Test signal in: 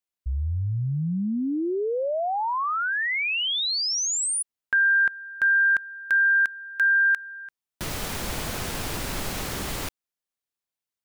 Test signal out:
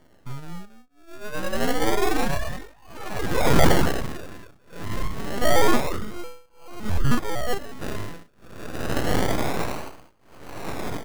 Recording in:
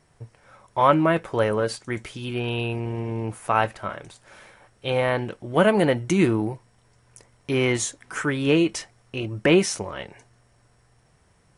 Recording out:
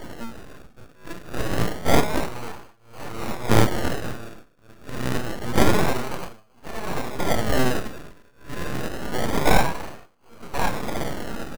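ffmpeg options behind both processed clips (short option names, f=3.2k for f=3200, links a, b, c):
-filter_complex "[0:a]aeval=exprs='val(0)+0.5*0.0501*sgn(val(0))':c=same,afftdn=nr=21:nf=-31,equalizer=f=1k:t=o:w=1:g=8,equalizer=f=2k:t=o:w=1:g=-9,equalizer=f=4k:t=o:w=1:g=11,equalizer=f=8k:t=o:w=1:g=-10,asplit=2[a][b];[b]aecho=0:1:1084|2168|3252|4336|5420:0.631|0.246|0.096|0.0374|0.0146[c];[a][c]amix=inputs=2:normalize=0,acrossover=split=4400[d][e];[e]acompressor=threshold=-43dB:ratio=4:attack=1:release=60[f];[d][f]amix=inputs=2:normalize=0,tremolo=f=0.54:d=0.99,highpass=70,asplit=2[g][h];[h]adelay=34,volume=-6dB[i];[g][i]amix=inputs=2:normalize=0,acrusher=samples=34:mix=1:aa=0.000001:lfo=1:lforange=20.4:lforate=0.27,equalizer=f=1.3k:w=6.2:g=8.5,dynaudnorm=f=750:g=5:m=5dB,aeval=exprs='abs(val(0))':c=same"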